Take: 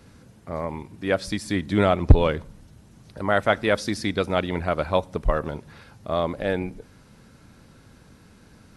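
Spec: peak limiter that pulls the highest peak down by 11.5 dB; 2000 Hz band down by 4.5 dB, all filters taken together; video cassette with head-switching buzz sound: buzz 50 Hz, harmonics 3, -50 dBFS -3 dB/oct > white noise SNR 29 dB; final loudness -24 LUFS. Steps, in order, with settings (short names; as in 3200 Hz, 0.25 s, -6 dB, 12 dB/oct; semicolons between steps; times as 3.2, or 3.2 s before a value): bell 2000 Hz -6 dB; limiter -14.5 dBFS; buzz 50 Hz, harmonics 3, -50 dBFS -3 dB/oct; white noise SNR 29 dB; gain +4.5 dB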